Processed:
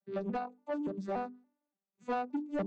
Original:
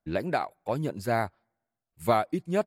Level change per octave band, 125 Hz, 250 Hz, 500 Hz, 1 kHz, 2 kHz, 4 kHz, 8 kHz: −13.5 dB, −4.0 dB, −9.5 dB, −8.5 dB, −11.5 dB, −14.5 dB, below −20 dB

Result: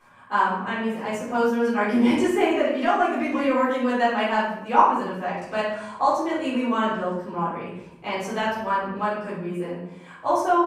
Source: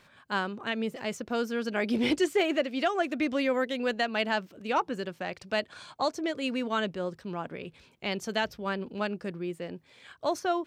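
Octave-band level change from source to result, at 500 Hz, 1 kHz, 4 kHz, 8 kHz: +6.0 dB, +11.5 dB, −1.0 dB, can't be measured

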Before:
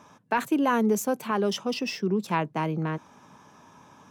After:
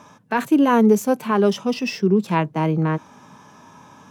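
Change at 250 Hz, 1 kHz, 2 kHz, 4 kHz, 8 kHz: +8.5, +5.0, +4.5, +2.0, +1.0 decibels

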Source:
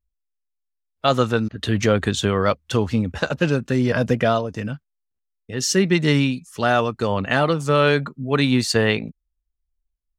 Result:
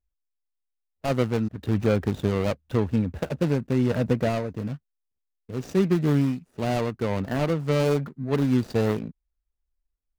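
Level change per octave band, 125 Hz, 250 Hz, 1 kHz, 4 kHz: −2.5, −3.0, −10.0, −14.0 decibels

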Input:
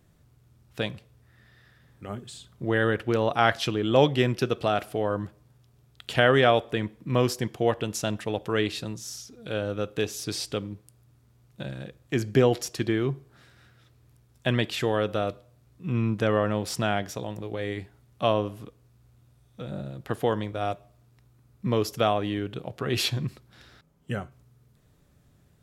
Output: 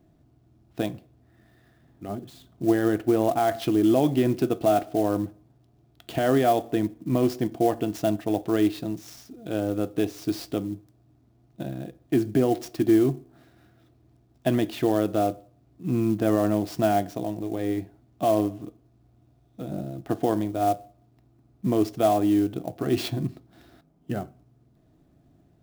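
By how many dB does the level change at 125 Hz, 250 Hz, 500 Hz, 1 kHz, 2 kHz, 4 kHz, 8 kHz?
−1.5, +6.5, +1.0, +1.5, −8.5, −7.5, −3.5 decibels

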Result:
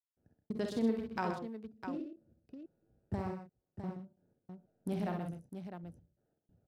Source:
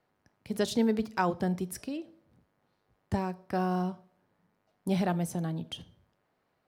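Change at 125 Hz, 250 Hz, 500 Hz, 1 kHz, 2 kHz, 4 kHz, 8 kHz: −9.0 dB, −7.0 dB, −7.5 dB, −9.0 dB, −8.5 dB, −13.0 dB, below −15 dB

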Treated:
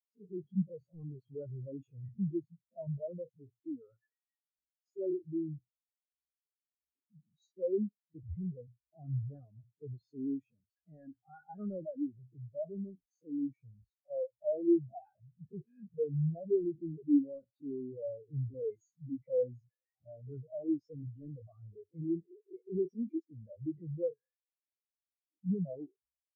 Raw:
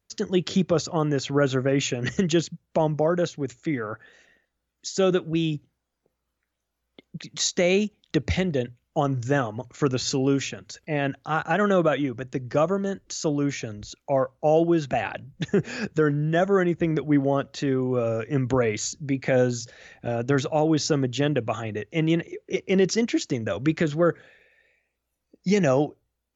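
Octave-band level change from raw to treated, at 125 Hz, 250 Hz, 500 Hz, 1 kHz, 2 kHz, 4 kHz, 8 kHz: −13.5 dB, −12.0 dB, −14.5 dB, −29.5 dB, below −40 dB, below −40 dB, can't be measured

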